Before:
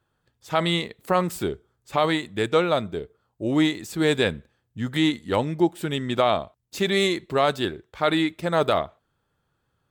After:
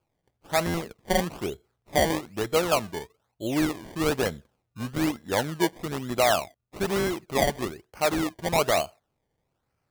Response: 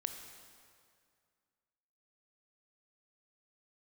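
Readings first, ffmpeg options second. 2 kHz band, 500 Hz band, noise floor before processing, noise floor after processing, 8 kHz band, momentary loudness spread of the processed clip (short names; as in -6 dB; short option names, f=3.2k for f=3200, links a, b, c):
-2.5 dB, -3.0 dB, -74 dBFS, -79 dBFS, +6.5 dB, 12 LU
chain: -af "equalizer=f=720:w=2.2:g=6.5,acrusher=samples=23:mix=1:aa=0.000001:lfo=1:lforange=23:lforate=1.1,volume=-5dB"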